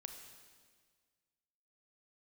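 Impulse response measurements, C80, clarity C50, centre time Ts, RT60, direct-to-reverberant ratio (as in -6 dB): 7.5 dB, 6.0 dB, 35 ms, 1.7 s, 5.0 dB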